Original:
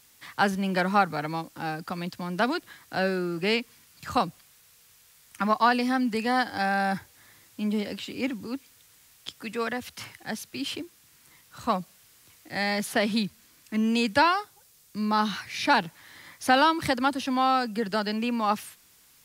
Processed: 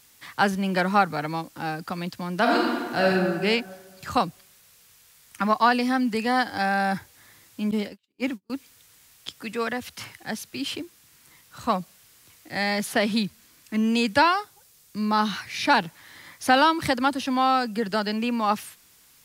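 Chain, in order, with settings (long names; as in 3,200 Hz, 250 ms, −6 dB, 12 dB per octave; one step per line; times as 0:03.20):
0:02.41–0:03.09: thrown reverb, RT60 1.6 s, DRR −3 dB
0:07.71–0:08.50: noise gate −31 dBFS, range −46 dB
level +2 dB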